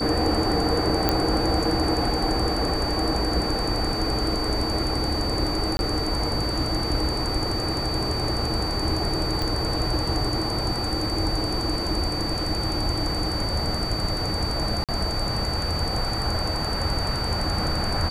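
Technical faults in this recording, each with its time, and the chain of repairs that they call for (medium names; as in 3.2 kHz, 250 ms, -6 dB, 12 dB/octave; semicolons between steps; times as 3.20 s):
whine 4.6 kHz -29 dBFS
1.09 s: pop -5 dBFS
5.77–5.79 s: dropout 21 ms
9.42 s: pop
14.84–14.89 s: dropout 47 ms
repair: de-click; band-stop 4.6 kHz, Q 30; interpolate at 5.77 s, 21 ms; interpolate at 14.84 s, 47 ms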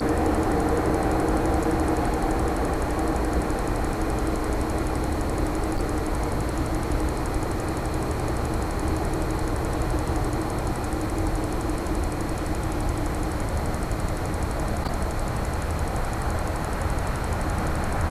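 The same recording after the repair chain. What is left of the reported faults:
nothing left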